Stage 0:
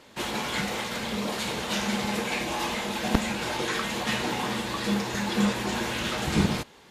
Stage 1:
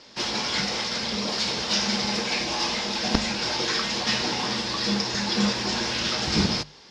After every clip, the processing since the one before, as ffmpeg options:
ffmpeg -i in.wav -af "lowpass=frequency=5200:width_type=q:width=6.6,bandreject=frequency=50:width_type=h:width=6,bandreject=frequency=100:width_type=h:width=6,bandreject=frequency=150:width_type=h:width=6" out.wav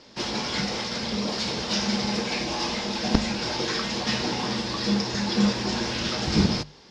ffmpeg -i in.wav -af "tiltshelf=frequency=660:gain=3.5" out.wav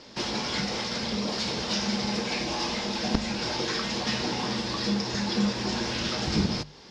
ffmpeg -i in.wav -af "acompressor=threshold=-36dB:ratio=1.5,volume=2.5dB" out.wav

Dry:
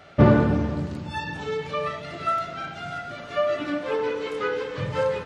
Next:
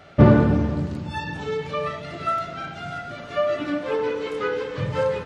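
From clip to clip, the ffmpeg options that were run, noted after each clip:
ffmpeg -i in.wav -af "lowshelf=frequency=410:gain=3.5" out.wav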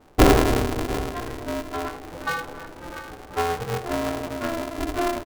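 ffmpeg -i in.wav -af "adynamicsmooth=sensitivity=1:basefreq=580,aecho=1:1:692:0.188,aeval=exprs='val(0)*sgn(sin(2*PI*170*n/s))':channel_layout=same,volume=-1.5dB" out.wav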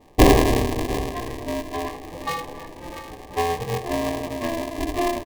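ffmpeg -i in.wav -af "asuperstop=centerf=1400:order=8:qfactor=3.4,volume=1.5dB" out.wav

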